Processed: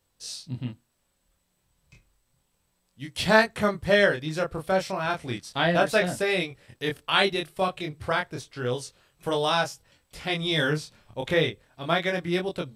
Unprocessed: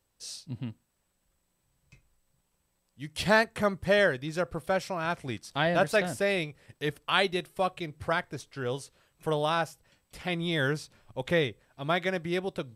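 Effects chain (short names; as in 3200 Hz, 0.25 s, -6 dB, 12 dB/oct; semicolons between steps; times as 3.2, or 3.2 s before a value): 8.81–10.62 dynamic EQ 5800 Hz, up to +7 dB, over -52 dBFS, Q 1.2; chorus 0.32 Hz, depth 4.1 ms; bell 3700 Hz +2.5 dB; gain +6 dB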